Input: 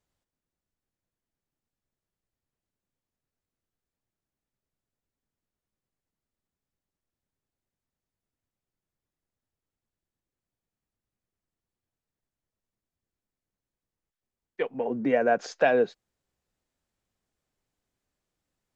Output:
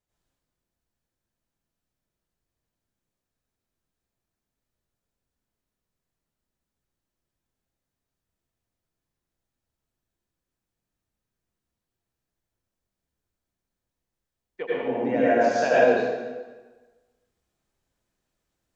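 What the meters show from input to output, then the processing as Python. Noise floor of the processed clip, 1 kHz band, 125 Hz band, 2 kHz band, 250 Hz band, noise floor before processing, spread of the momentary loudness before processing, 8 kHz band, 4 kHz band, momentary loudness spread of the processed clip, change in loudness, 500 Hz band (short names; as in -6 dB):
under -85 dBFS, +4.5 dB, +4.0 dB, +4.0 dB, +4.0 dB, under -85 dBFS, 9 LU, n/a, +4.0 dB, 18 LU, +3.5 dB, +4.0 dB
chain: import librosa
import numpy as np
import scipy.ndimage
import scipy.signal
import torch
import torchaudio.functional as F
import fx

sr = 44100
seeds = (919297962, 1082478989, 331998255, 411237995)

y = fx.rev_plate(x, sr, seeds[0], rt60_s=1.3, hf_ratio=0.85, predelay_ms=75, drr_db=-8.5)
y = y * librosa.db_to_amplitude(-5.0)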